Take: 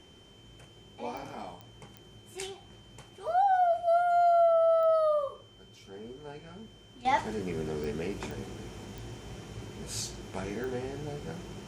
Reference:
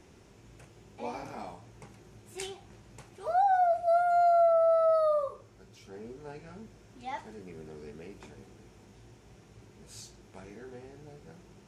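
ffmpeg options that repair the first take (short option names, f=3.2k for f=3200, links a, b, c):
-af "adeclick=t=4,bandreject=f=3.1k:w=30,asetnsamples=n=441:p=0,asendcmd='7.05 volume volume -11.5dB',volume=0dB"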